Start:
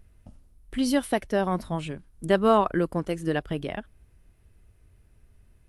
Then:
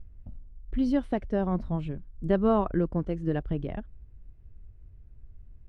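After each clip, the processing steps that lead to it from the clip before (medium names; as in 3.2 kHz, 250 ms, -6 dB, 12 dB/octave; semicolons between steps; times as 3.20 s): low-pass 5.9 kHz 12 dB/octave; tilt EQ -3.5 dB/octave; trim -7.5 dB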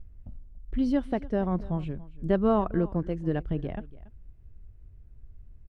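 delay 283 ms -19.5 dB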